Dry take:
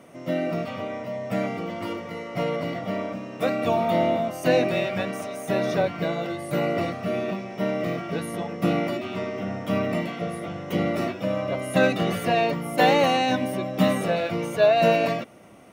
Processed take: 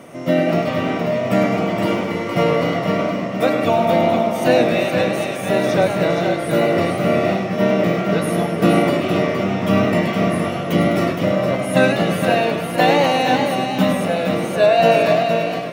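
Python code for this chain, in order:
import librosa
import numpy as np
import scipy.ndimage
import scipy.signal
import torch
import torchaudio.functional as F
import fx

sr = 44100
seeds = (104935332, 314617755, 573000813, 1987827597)

y = x + 10.0 ** (-6.0 / 20.0) * np.pad(x, (int(467 * sr / 1000.0), 0))[:len(x)]
y = fx.rider(y, sr, range_db=4, speed_s=2.0)
y = fx.echo_warbled(y, sr, ms=102, feedback_pct=63, rate_hz=2.8, cents=145, wet_db=-9.0)
y = y * 10.0 ** (5.5 / 20.0)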